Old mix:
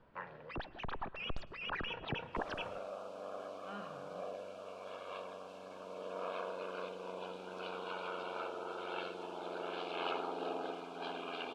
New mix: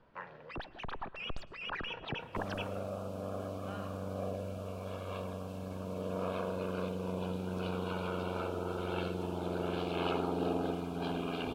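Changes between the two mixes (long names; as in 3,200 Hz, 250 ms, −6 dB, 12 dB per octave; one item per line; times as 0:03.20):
second sound: remove Bessel high-pass filter 650 Hz, order 2
master: remove high-frequency loss of the air 73 metres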